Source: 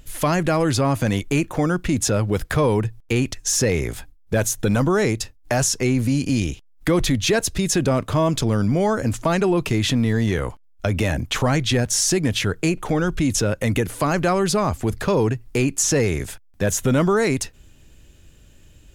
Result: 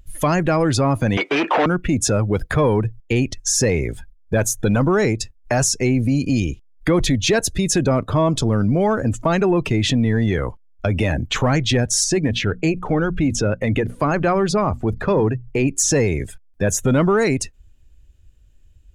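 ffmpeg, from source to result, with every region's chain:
-filter_complex "[0:a]asettb=1/sr,asplit=3[s0][s1][s2];[s0]atrim=end=1.174[s3];[s1]atrim=start=1.17:end=1.66,asetpts=PTS-STARTPTS,afade=t=in:d=0.004:c=qsin,afade=t=out:st=0.486:d=0.004:c=qsin,acrossover=split=3100[s4][s5];[s5]acompressor=threshold=0.00631:ratio=4:attack=1:release=60[s6];[s4][s6]amix=inputs=2:normalize=0,asplit=2[s7][s8];[s8]highpass=f=720:p=1,volume=50.1,asoftclip=type=tanh:threshold=0.316[s9];[s7][s9]amix=inputs=2:normalize=0,lowpass=f=2500:p=1,volume=0.501,highpass=370,lowpass=7900[s10];[s2]atrim=start=1.656[s11];[s3][s10]acrossfade=d=0.004:c1=hsin:c2=qsin[s12];[s12][s11]acrossfade=d=0.004:c1=qsin:c2=hsin,asettb=1/sr,asplit=3[s13][s14][s15];[s13]atrim=end=12.044[s16];[s14]atrim=start=12.04:end=15.67,asetpts=PTS-STARTPTS,afade=t=in:d=0.004:c=qsin,afade=t=out:st=3.626:d=0.004:c=qsin,highshelf=f=6400:g=-8.5,bandreject=f=60:t=h:w=6,bandreject=f=120:t=h:w=6,bandreject=f=180:t=h:w=6,bandreject=f=240:t=h:w=6[s17];[s15]atrim=start=15.666[s18];[s16][s17]acrossfade=d=0.004:c1=hsin:c2=qsin[s19];[s19][s18]acrossfade=d=0.004:c1=qsin:c2=hsin,afftdn=nr=17:nf=-34,acontrast=30,volume=0.708"

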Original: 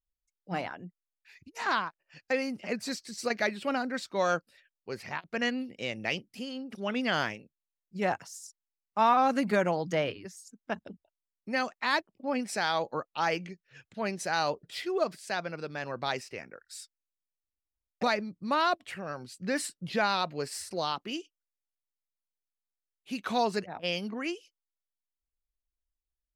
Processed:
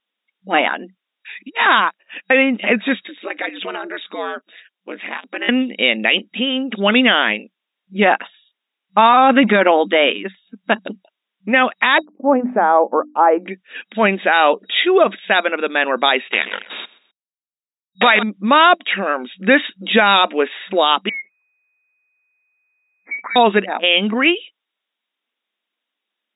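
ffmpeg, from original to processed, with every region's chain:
-filter_complex "[0:a]asettb=1/sr,asplit=3[s0][s1][s2];[s0]atrim=end=3.074[s3];[s1]atrim=start=3.07:end=5.49,asetpts=PTS-STARTPTS,afade=t=in:d=0.004:c=qsin,afade=t=out:st=2.416:d=0.004:c=qsin,acompressor=threshold=0.00708:ratio=2.5:attack=3.2:release=140:knee=1:detection=peak,aeval=exprs='val(0)*sin(2*PI*91*n/s)':c=same[s4];[s2]atrim=start=5.486[s5];[s3][s4]acrossfade=d=0.004:c1=hsin:c2=qsin[s6];[s6][s5]acrossfade=d=0.004:c1=qsin:c2=hsin,asettb=1/sr,asplit=3[s7][s8][s9];[s7]atrim=end=11.984[s10];[s8]atrim=start=11.98:end=13.48,asetpts=PTS-STARTPTS,afade=t=in:d=0.004:c=qsin,afade=t=out:st=1.496:d=0.004:c=qsin,lowpass=f=1100:w=0.5412,lowpass=f=1100:w=1.3066,bandreject=f=50:t=h:w=6,bandreject=f=100:t=h:w=6,bandreject=f=150:t=h:w=6,bandreject=f=200:t=h:w=6,bandreject=f=250:t=h:w=6,bandreject=f=300:t=h:w=6[s11];[s9]atrim=start=13.476[s12];[s10][s11]acrossfade=d=0.004:c1=hsin:c2=qsin[s13];[s13][s12]acrossfade=d=0.004:c1=qsin:c2=hsin,asettb=1/sr,asplit=3[s14][s15][s16];[s14]atrim=end=16.324[s17];[s15]atrim=start=16.32:end=18.23,asetpts=PTS-STARTPTS,afade=t=in:d=0.004:c=qsin,afade=t=out:st=1.906:d=0.004:c=qsin,equalizer=f=2100:w=0.37:g=10,acrusher=bits=5:dc=4:mix=0:aa=0.000001,aecho=1:1:128|256:0.0891|0.0285,atrim=end_sample=84231[s18];[s16]atrim=start=18.226[s19];[s17][s18]acrossfade=d=0.004:c1=hsin:c2=qsin[s20];[s20][s19]acrossfade=d=0.004:c1=qsin:c2=hsin,asettb=1/sr,asplit=3[s21][s22][s23];[s21]atrim=end=21.094[s24];[s22]atrim=start=21.09:end=23.36,asetpts=PTS-STARTPTS,afade=t=in:d=0.004:c=qsin,afade=t=out:st=2.266:d=0.004:c=qsin,acompressor=threshold=0.00447:ratio=4:attack=3.2:release=140:knee=1:detection=peak,lowpass=f=2100:t=q:w=0.5098,lowpass=f=2100:t=q:w=0.6013,lowpass=f=2100:t=q:w=0.9,lowpass=f=2100:t=q:w=2.563,afreqshift=-2500[s25];[s23]atrim=start=23.356[s26];[s24][s25]acrossfade=d=0.004:c1=hsin:c2=qsin[s27];[s27][s26]acrossfade=d=0.004:c1=qsin:c2=hsin,afftfilt=real='re*between(b*sr/4096,190,3800)':imag='im*between(b*sr/4096,190,3800)':win_size=4096:overlap=0.75,highshelf=f=2200:g=11.5,alimiter=level_in=7.94:limit=0.891:release=50:level=0:latency=1,volume=0.891"

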